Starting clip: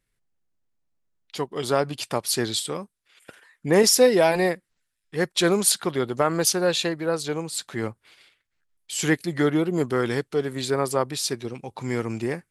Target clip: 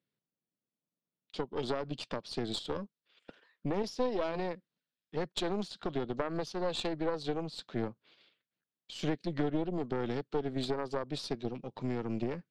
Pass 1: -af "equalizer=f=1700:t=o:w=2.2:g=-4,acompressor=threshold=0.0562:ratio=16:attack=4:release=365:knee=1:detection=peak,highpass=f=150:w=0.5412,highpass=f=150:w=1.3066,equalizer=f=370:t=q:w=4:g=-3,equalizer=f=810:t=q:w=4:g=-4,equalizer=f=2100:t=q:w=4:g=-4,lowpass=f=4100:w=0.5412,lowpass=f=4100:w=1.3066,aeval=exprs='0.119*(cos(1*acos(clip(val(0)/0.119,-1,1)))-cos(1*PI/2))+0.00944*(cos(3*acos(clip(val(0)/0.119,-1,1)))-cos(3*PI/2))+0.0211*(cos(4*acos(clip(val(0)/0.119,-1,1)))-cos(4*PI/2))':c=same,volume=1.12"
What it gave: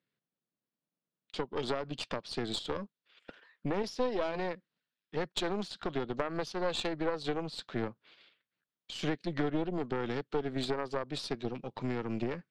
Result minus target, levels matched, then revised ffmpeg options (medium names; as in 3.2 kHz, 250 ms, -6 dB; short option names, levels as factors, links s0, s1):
2 kHz band +3.5 dB
-af "equalizer=f=1700:t=o:w=2.2:g=-10,acompressor=threshold=0.0562:ratio=16:attack=4:release=365:knee=1:detection=peak,highpass=f=150:w=0.5412,highpass=f=150:w=1.3066,equalizer=f=370:t=q:w=4:g=-3,equalizer=f=810:t=q:w=4:g=-4,equalizer=f=2100:t=q:w=4:g=-4,lowpass=f=4100:w=0.5412,lowpass=f=4100:w=1.3066,aeval=exprs='0.119*(cos(1*acos(clip(val(0)/0.119,-1,1)))-cos(1*PI/2))+0.00944*(cos(3*acos(clip(val(0)/0.119,-1,1)))-cos(3*PI/2))+0.0211*(cos(4*acos(clip(val(0)/0.119,-1,1)))-cos(4*PI/2))':c=same,volume=1.12"